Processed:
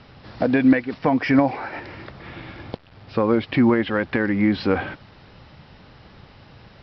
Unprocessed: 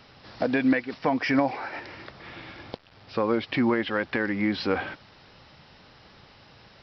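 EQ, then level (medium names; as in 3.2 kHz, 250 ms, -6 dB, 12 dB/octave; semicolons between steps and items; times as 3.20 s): distance through air 120 m; bass shelf 250 Hz +7.5 dB; +3.5 dB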